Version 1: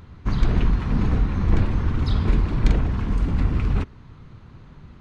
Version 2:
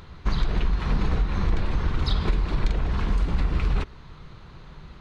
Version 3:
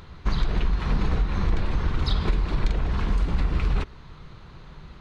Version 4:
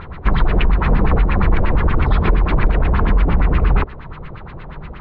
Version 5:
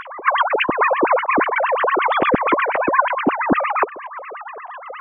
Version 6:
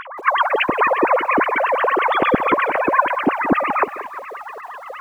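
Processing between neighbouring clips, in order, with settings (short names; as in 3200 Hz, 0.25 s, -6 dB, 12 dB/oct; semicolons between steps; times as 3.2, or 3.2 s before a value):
fifteen-band EQ 100 Hz -11 dB, 250 Hz -9 dB, 4000 Hz +5 dB; compressor, threshold -22 dBFS, peak gain reduction 10.5 dB; gain +4 dB
nothing audible
in parallel at +2 dB: limiter -20.5 dBFS, peak gain reduction 8.5 dB; on the sum: LFO low-pass sine 8.5 Hz 520–2600 Hz; gain +4 dB
sine-wave speech; gain -5 dB
lo-fi delay 0.177 s, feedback 35%, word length 7-bit, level -13.5 dB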